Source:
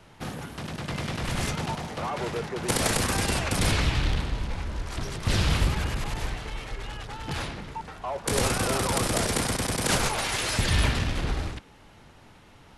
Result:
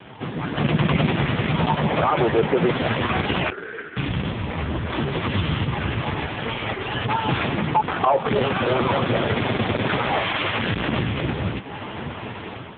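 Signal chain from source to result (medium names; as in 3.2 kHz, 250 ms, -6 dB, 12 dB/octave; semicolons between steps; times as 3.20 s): compression 6:1, threshold -40 dBFS, peak gain reduction 19.5 dB; 3.50–3.97 s: two resonant band-passes 800 Hz, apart 1.8 oct; 9.98–11.01 s: Schmitt trigger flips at -51 dBFS; wow and flutter 70 cents; level rider gain up to 10.5 dB; loudness maximiser +20 dB; trim -4.5 dB; AMR-NB 5.15 kbps 8 kHz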